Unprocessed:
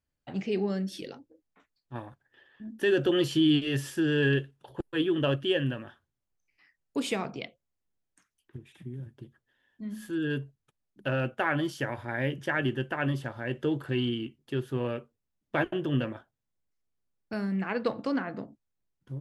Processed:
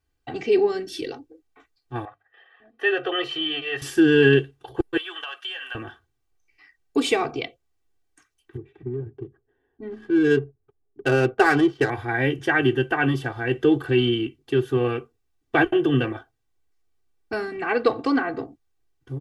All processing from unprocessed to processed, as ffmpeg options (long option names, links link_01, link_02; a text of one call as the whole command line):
ffmpeg -i in.wav -filter_complex "[0:a]asettb=1/sr,asplit=3[link_01][link_02][link_03];[link_01]atrim=end=2.054[link_04];[link_02]atrim=start=2.05:end=3.82,asetpts=PTS-STARTPTS,afade=type=in:duration=0.004:curve=qsin,afade=type=out:start_time=1.766:duration=0.004:curve=qsin,acrossover=split=490 3200:gain=0.0794 1 0.0708[link_05][link_06][link_07];[link_05][link_06][link_07]amix=inputs=3:normalize=0,bandreject=frequency=50:width_type=h:width=6,bandreject=frequency=100:width_type=h:width=6,bandreject=frequency=150:width_type=h:width=6,bandreject=frequency=200:width_type=h:width=6,bandreject=frequency=250:width_type=h:width=6,bandreject=frequency=300:width_type=h:width=6,bandreject=frequency=350:width_type=h:width=6,aecho=1:1:1.6:0.53,atrim=end_sample=78057[link_08];[link_03]atrim=start=3.816[link_09];[link_04][link_08]acrossfade=duration=0.004:curve1=hsin:curve2=qsin[link_10];[link_10][link_09]acrossfade=duration=0.004:curve1=qsin:curve2=hsin,asettb=1/sr,asplit=3[link_11][link_12][link_13];[link_11]atrim=end=4.974[link_14];[link_12]atrim=start=4.97:end=5.75,asetpts=PTS-STARTPTS,afade=type=in:duration=0.004:curve=qsin,afade=type=out:start_time=0.776:duration=0.004:curve=qsin,highpass=frequency=850:width=0.5412,highpass=frequency=850:width=1.3066,acompressor=threshold=-37dB:ratio=6:attack=3.2:release=140:knee=1:detection=peak[link_15];[link_13]atrim=start=5.746[link_16];[link_14][link_15]acrossfade=duration=0.004:curve1=hsin:curve2=qsin[link_17];[link_17][link_16]acrossfade=duration=0.004:curve1=qsin:curve2=hsin,asettb=1/sr,asplit=3[link_18][link_19][link_20];[link_18]atrim=end=8.574[link_21];[link_19]atrim=start=8.57:end=11.9,asetpts=PTS-STARTPTS,afade=type=in:duration=0.004:curve=qsin,afade=type=out:start_time=3.326:duration=0.004:curve=qsin,equalizer=frequency=410:width=7.2:gain=12,adynamicsmooth=sensitivity=7.5:basefreq=1000[link_22];[link_20]atrim=start=11.896[link_23];[link_21][link_22]acrossfade=duration=0.004:curve1=hsin:curve2=qsin[link_24];[link_24][link_23]acrossfade=duration=0.004:curve1=qsin:curve2=hsin,highshelf=frequency=7900:gain=-6.5,aecho=1:1:2.6:0.96,volume=6.5dB" out.wav